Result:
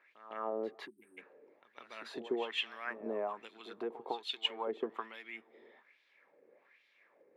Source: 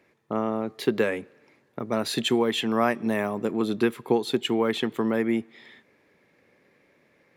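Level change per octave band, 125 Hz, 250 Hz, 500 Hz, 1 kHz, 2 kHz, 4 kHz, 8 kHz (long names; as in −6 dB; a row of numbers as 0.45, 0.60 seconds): below −25 dB, −21.0 dB, −14.0 dB, −11.5 dB, −11.5 dB, −8.0 dB, below −20 dB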